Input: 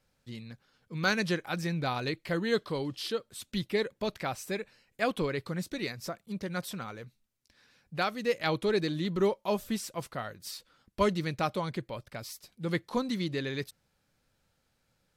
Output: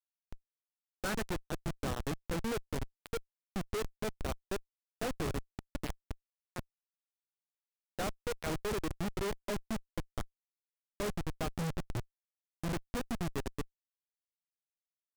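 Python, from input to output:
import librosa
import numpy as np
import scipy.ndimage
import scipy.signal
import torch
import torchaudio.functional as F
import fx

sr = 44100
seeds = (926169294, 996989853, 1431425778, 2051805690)

y = fx.cheby_harmonics(x, sr, harmonics=(2, 3, 4, 8), levels_db=(-16, -11, -40, -31), full_scale_db=-13.0)
y = fx.riaa(y, sr, side='playback', at=(11.53, 12.71), fade=0.02)
y = fx.schmitt(y, sr, flips_db=-43.5)
y = fx.noise_mod_delay(y, sr, seeds[0], noise_hz=4800.0, depth_ms=0.033)
y = F.gain(torch.from_numpy(y), 10.0).numpy()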